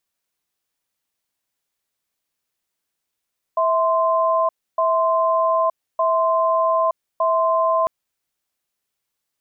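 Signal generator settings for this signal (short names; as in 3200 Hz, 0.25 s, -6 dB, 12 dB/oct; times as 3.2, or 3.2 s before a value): cadence 653 Hz, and 1040 Hz, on 0.92 s, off 0.29 s, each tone -18 dBFS 4.30 s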